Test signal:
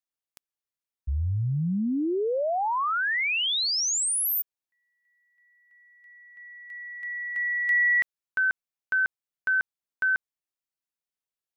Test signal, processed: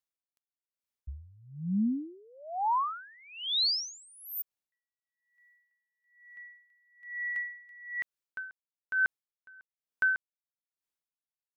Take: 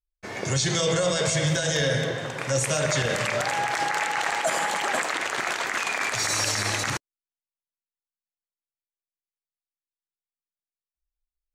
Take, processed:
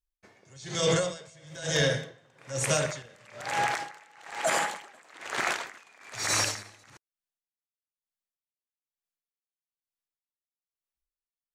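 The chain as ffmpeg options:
ffmpeg -i in.wav -af "aeval=exprs='val(0)*pow(10,-30*(0.5-0.5*cos(2*PI*1.1*n/s))/20)':channel_layout=same" out.wav

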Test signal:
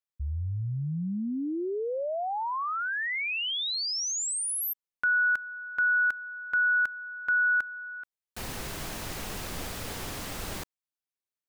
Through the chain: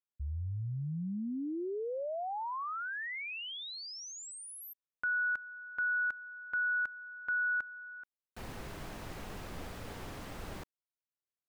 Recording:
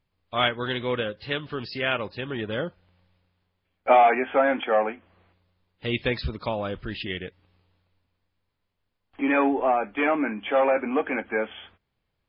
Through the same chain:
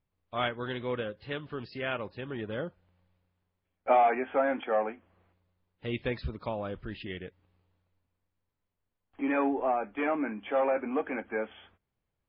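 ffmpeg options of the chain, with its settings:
ffmpeg -i in.wav -af "highshelf=frequency=3100:gain=-11.5,volume=-5.5dB" out.wav

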